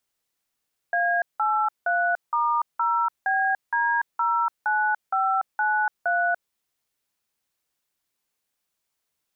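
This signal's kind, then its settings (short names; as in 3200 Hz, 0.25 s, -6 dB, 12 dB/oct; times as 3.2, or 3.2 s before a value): DTMF "A83*0BD09593", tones 0.29 s, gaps 0.176 s, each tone -22.5 dBFS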